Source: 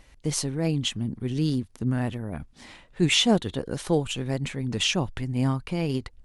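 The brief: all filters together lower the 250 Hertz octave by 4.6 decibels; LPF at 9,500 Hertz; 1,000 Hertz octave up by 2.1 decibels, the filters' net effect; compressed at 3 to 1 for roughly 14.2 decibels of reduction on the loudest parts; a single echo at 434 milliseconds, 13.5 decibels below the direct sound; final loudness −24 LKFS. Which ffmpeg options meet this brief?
ffmpeg -i in.wav -af "lowpass=9500,equalizer=frequency=250:width_type=o:gain=-6.5,equalizer=frequency=1000:width_type=o:gain=3.5,acompressor=threshold=-38dB:ratio=3,aecho=1:1:434:0.211,volume=15dB" out.wav

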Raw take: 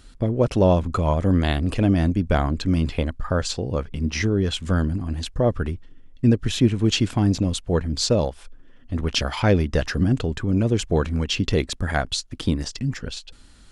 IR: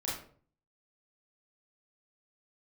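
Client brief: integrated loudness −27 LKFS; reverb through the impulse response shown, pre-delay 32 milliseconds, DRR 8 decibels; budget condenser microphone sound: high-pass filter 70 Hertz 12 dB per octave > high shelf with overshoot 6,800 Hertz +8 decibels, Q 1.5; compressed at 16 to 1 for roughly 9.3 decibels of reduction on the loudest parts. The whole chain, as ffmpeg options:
-filter_complex "[0:a]acompressor=threshold=-21dB:ratio=16,asplit=2[link_01][link_02];[1:a]atrim=start_sample=2205,adelay=32[link_03];[link_02][link_03]afir=irnorm=-1:irlink=0,volume=-12dB[link_04];[link_01][link_04]amix=inputs=2:normalize=0,highpass=70,highshelf=frequency=6800:width_type=q:width=1.5:gain=8,volume=0.5dB"

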